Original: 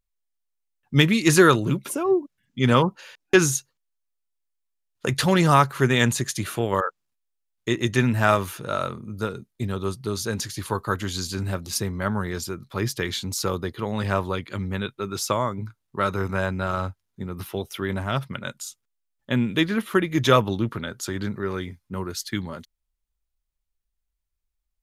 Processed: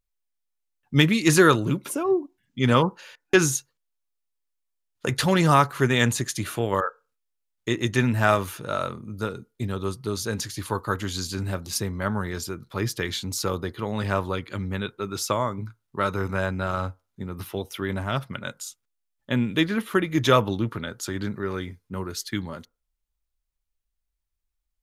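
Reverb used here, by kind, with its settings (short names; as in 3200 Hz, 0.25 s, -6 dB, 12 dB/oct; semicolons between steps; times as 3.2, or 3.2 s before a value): FDN reverb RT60 0.3 s, low-frequency decay 0.7×, high-frequency decay 0.3×, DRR 17.5 dB; gain -1 dB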